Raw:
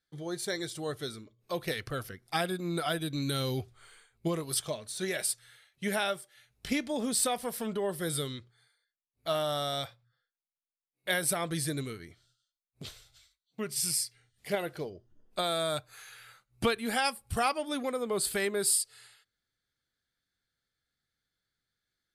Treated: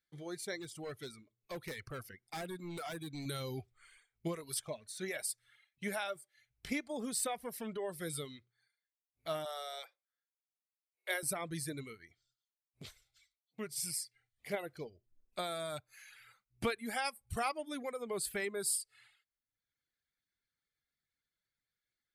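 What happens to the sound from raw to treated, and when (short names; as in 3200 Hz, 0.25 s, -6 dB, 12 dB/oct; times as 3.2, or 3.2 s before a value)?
0.58–3.26 hard clip -31.5 dBFS
9.45–11.23 steep high-pass 340 Hz 96 dB/oct
whole clip: bell 2200 Hz +7.5 dB 0.4 oct; reverb removal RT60 0.84 s; dynamic EQ 2800 Hz, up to -5 dB, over -47 dBFS, Q 1.2; gain -6.5 dB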